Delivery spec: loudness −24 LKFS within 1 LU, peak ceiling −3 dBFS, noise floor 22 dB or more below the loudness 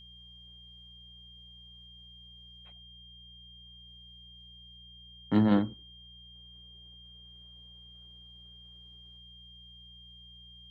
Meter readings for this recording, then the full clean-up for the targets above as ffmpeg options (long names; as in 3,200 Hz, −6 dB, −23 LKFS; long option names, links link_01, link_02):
mains hum 60 Hz; hum harmonics up to 180 Hz; level of the hum −55 dBFS; interfering tone 3,200 Hz; level of the tone −51 dBFS; integrated loudness −27.0 LKFS; sample peak −13.5 dBFS; target loudness −24.0 LKFS
→ -af "bandreject=frequency=60:width_type=h:width=4,bandreject=frequency=120:width_type=h:width=4,bandreject=frequency=180:width_type=h:width=4"
-af "bandreject=frequency=3200:width=30"
-af "volume=3dB"